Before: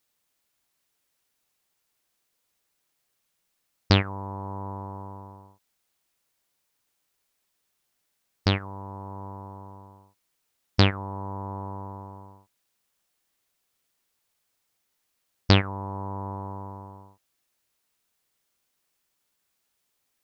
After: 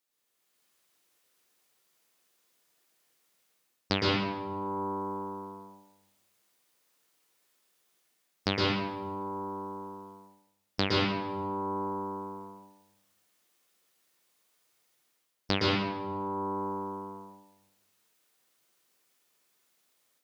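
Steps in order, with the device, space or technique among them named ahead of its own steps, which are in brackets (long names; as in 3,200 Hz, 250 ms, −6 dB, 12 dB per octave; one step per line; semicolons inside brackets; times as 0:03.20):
far laptop microphone (convolution reverb RT60 0.90 s, pre-delay 109 ms, DRR −4 dB; high-pass filter 170 Hz 12 dB per octave; automatic gain control gain up to 7 dB)
level −7.5 dB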